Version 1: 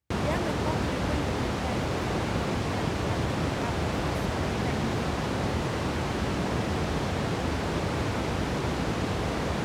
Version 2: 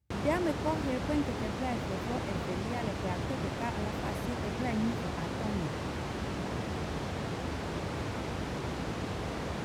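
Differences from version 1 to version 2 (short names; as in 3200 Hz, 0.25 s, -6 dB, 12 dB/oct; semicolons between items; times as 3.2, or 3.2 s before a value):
speech: add low shelf 320 Hz +11.5 dB; background -7.0 dB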